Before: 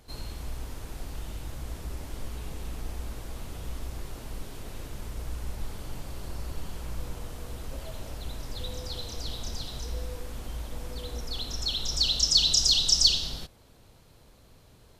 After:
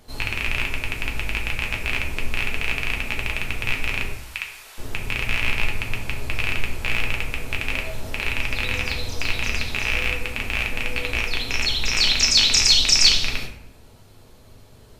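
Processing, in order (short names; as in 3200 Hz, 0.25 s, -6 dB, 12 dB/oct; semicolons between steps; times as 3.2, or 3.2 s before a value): rattling part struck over -34 dBFS, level -13 dBFS; 4.13–4.78 HPF 1200 Hz 12 dB/oct; reverb RT60 0.65 s, pre-delay 5 ms, DRR 0 dB; gain +3.5 dB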